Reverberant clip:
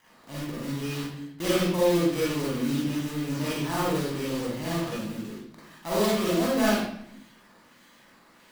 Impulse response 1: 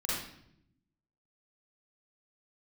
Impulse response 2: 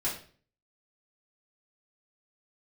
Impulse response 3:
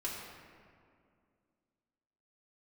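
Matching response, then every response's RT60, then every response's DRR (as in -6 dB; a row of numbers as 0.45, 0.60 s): 1; 0.75, 0.45, 2.3 s; -7.5, -9.5, -6.5 dB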